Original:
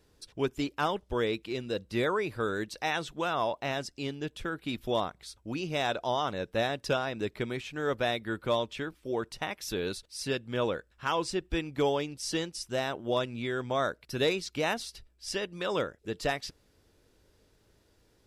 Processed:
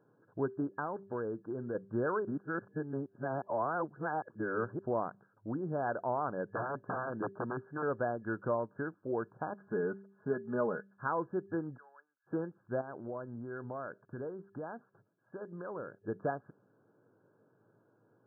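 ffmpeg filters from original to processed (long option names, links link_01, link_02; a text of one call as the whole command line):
ffmpeg -i in.wav -filter_complex "[0:a]asettb=1/sr,asplit=3[link_01][link_02][link_03];[link_01]atrim=end=0.794[link_04];[link_02]atrim=start=0.79:end=1.75,asetpts=PTS-STARTPTS,afade=type=in:duration=0.004:curve=qsin,afade=type=out:start_time=0.956:duration=0.004:curve=qsin,acompressor=threshold=-33dB:ratio=2.5:attack=3.2:release=140:knee=1:detection=peak[link_05];[link_03]atrim=start=1.746[link_06];[link_04][link_05]acrossfade=duration=0.004:curve1=hsin:curve2=qsin[link_07];[link_07][link_06]acrossfade=duration=0.004:curve1=qsin:curve2=hsin,asettb=1/sr,asplit=3[link_08][link_09][link_10];[link_08]atrim=end=6.454[link_11];[link_09]atrim=start=6.45:end=7.83,asetpts=PTS-STARTPTS,afade=type=in:duration=0.004:curve=qsin,afade=type=out:start_time=1.376:duration=0.004:curve=qsin,aeval=exprs='(mod(17.8*val(0)+1,2)-1)/17.8':channel_layout=same[link_12];[link_10]atrim=start=7.826[link_13];[link_11][link_12]acrossfade=duration=0.004:curve1=hsin:curve2=qsin[link_14];[link_14][link_13]acrossfade=duration=0.004:curve1=qsin:curve2=hsin,asettb=1/sr,asplit=3[link_15][link_16][link_17];[link_15]atrim=end=9.524[link_18];[link_16]atrim=start=9.52:end=10.93,asetpts=PTS-STARTPTS,afade=type=in:duration=0.004:curve=qsin,afade=type=out:start_time=1.406:duration=0.004:curve=qsin,aecho=1:1:4.8:0.65,atrim=end_sample=62181[link_19];[link_17]atrim=start=10.926[link_20];[link_18][link_19]acrossfade=duration=0.004:curve1=hsin:curve2=qsin[link_21];[link_21][link_20]acrossfade=duration=0.004:curve1=qsin:curve2=hsin,asplit=3[link_22][link_23][link_24];[link_22]afade=type=out:start_time=11.76:duration=0.02[link_25];[link_23]asuperpass=centerf=2600:order=4:qfactor=1.8,afade=type=in:start_time=11.76:duration=0.02,afade=type=out:start_time=12.26:duration=0.02[link_26];[link_24]afade=type=in:start_time=12.26:duration=0.02[link_27];[link_25][link_26][link_27]amix=inputs=3:normalize=0,asettb=1/sr,asplit=3[link_28][link_29][link_30];[link_28]atrim=end=12.814[link_31];[link_29]atrim=start=12.81:end=16.08,asetpts=PTS-STARTPTS,afade=type=in:duration=0.004:curve=qsin,afade=type=out:start_time=3.266:duration=0.004:curve=qsin,acompressor=threshold=-40dB:ratio=3:attack=3.2:release=140:knee=1:detection=peak[link_32];[link_30]atrim=start=16.076[link_33];[link_31][link_32]acrossfade=duration=0.004:curve1=hsin:curve2=qsin[link_34];[link_34][link_33]acrossfade=duration=0.004:curve1=qsin:curve2=hsin,asplit=3[link_35][link_36][link_37];[link_35]atrim=end=2.252[link_38];[link_36]atrim=start=2.248:end=4.792,asetpts=PTS-STARTPTS,areverse[link_39];[link_37]atrim=start=4.788[link_40];[link_38][link_39]acrossfade=duration=0.004:curve1=hsin:curve2=hsin[link_41];[link_41][link_40]acrossfade=duration=0.004:curve1=hsin:curve2=hsin,bandreject=frequency=196.6:width_type=h:width=4,bandreject=frequency=393.2:width_type=h:width=4,afftfilt=real='re*between(b*sr/4096,100,1700)':imag='im*between(b*sr/4096,100,1700)':win_size=4096:overlap=0.75,acompressor=threshold=-35dB:ratio=1.5" out.wav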